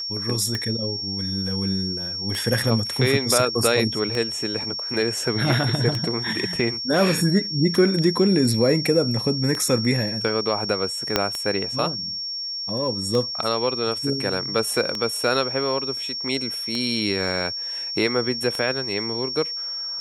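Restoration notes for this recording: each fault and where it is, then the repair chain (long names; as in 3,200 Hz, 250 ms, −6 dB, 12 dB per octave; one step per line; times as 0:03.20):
scratch tick 33 1/3 rpm −12 dBFS
whistle 5,500 Hz −27 dBFS
0:11.16: click −2 dBFS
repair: click removal
notch filter 5,500 Hz, Q 30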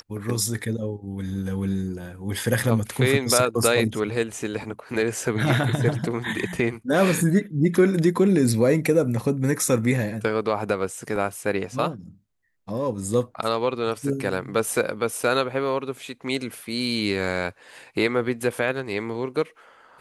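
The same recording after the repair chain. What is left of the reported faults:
0:11.16: click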